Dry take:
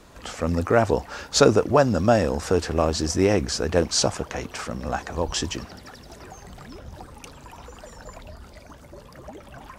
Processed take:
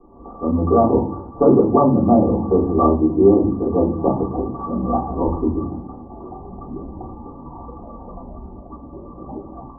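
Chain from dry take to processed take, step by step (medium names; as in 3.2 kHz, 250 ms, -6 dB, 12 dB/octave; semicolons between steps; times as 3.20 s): rippled Chebyshev low-pass 1.2 kHz, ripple 9 dB; reverberation RT60 0.50 s, pre-delay 3 ms, DRR -6.5 dB; level rider gain up to 5 dB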